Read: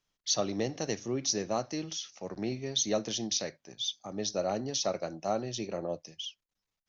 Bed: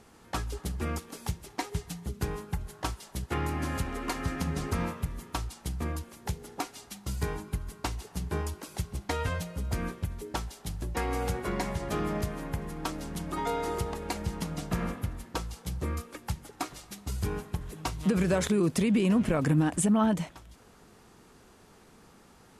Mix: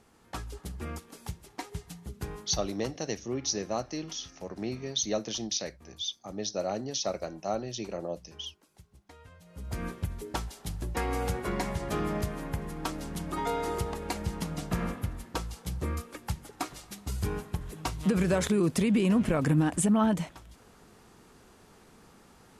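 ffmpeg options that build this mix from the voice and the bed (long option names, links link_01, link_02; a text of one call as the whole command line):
ffmpeg -i stem1.wav -i stem2.wav -filter_complex "[0:a]adelay=2200,volume=-0.5dB[link_01];[1:a]volume=16.5dB,afade=type=out:start_time=2.71:duration=0.22:silence=0.149624,afade=type=in:start_time=9.41:duration=0.56:silence=0.0794328[link_02];[link_01][link_02]amix=inputs=2:normalize=0" out.wav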